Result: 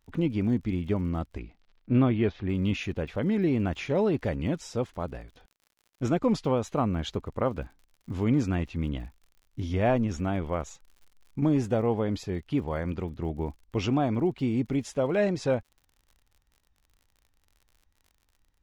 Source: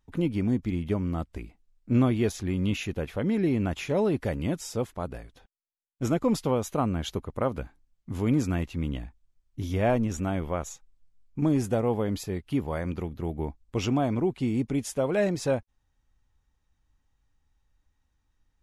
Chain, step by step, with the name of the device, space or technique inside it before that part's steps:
lo-fi chain (low-pass filter 5,400 Hz 12 dB per octave; tape wow and flutter; surface crackle 62 per second −47 dBFS)
0:01.39–0:02.48: low-pass filter 5,400 Hz → 3,100 Hz 24 dB per octave

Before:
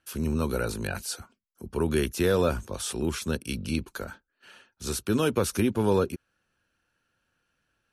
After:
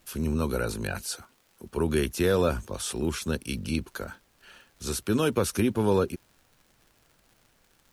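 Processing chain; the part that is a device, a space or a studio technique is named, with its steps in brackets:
vinyl LP (surface crackle 110 per second −47 dBFS; pink noise bed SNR 36 dB)
0:01.19–0:01.77: low-shelf EQ 200 Hz −8.5 dB

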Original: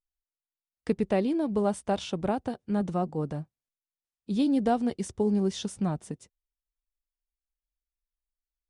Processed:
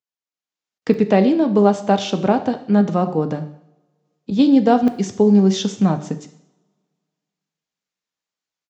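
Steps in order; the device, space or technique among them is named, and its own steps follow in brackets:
call with lost packets (high-pass filter 120 Hz 24 dB per octave; downsampling to 16,000 Hz; automatic gain control gain up to 10.5 dB; dropped packets bursts)
0:04.30–0:04.83: downward expander −14 dBFS
coupled-rooms reverb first 0.68 s, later 2.1 s, from −27 dB, DRR 8 dB
level +1 dB

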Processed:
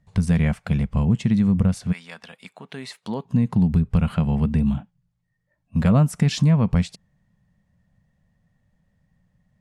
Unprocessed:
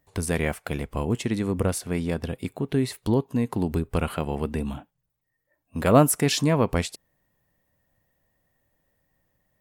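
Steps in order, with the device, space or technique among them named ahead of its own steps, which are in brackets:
0:01.91–0:03.24: high-pass filter 1,300 Hz → 420 Hz 12 dB per octave
jukebox (low-pass filter 6,600 Hz 12 dB per octave; low shelf with overshoot 250 Hz +8.5 dB, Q 3; downward compressor 3 to 1, threshold −15 dBFS, peak gain reduction 7.5 dB)

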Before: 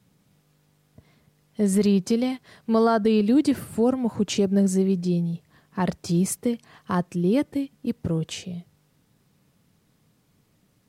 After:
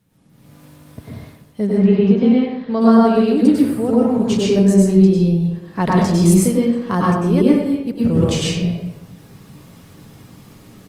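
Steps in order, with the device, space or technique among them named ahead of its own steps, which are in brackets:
0:01.65–0:02.80: low-pass filter 2,500 Hz → 4,900 Hz 24 dB per octave
speakerphone in a meeting room (convolution reverb RT60 0.90 s, pre-delay 94 ms, DRR −5 dB; far-end echo of a speakerphone 290 ms, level −29 dB; automatic gain control gain up to 16.5 dB; level −1 dB; Opus 32 kbit/s 48,000 Hz)

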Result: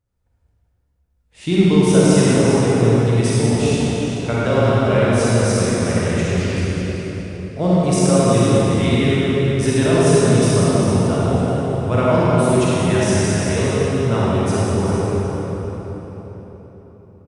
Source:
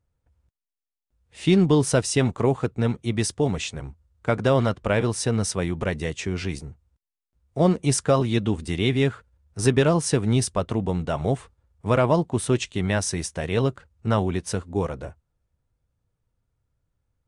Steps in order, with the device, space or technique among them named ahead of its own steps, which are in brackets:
cave (single-tap delay 394 ms −9.5 dB; convolution reverb RT60 4.3 s, pre-delay 33 ms, DRR −8.5 dB)
level −3 dB

